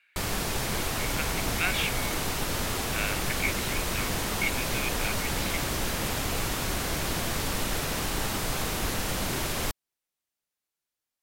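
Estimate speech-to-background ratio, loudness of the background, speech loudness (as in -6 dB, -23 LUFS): -4.5 dB, -29.5 LUFS, -34.0 LUFS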